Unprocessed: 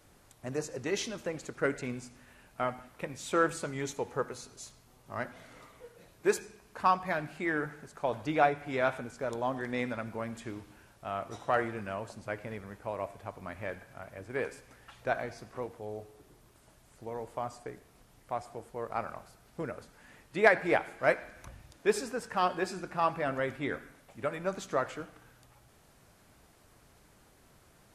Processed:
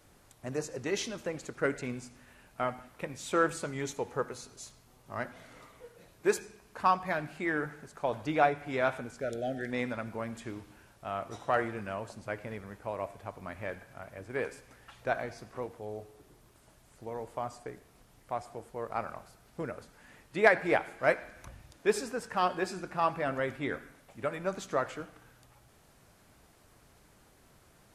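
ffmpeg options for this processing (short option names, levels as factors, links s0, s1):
-filter_complex "[0:a]asplit=3[s0][s1][s2];[s0]afade=t=out:st=9.2:d=0.02[s3];[s1]asuperstop=centerf=1000:order=12:qfactor=1.7,afade=t=in:st=9.2:d=0.02,afade=t=out:st=9.7:d=0.02[s4];[s2]afade=t=in:st=9.7:d=0.02[s5];[s3][s4][s5]amix=inputs=3:normalize=0"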